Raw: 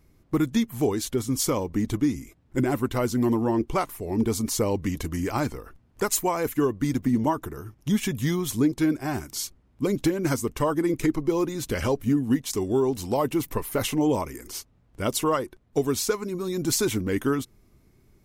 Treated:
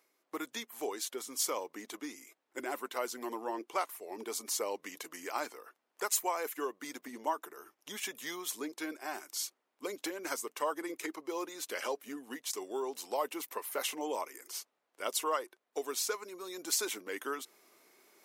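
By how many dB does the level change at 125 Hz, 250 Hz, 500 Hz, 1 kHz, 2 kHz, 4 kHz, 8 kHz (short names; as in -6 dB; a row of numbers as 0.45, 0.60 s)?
under -35 dB, -20.5 dB, -12.0 dB, -6.5 dB, -6.0 dB, -5.5 dB, -5.5 dB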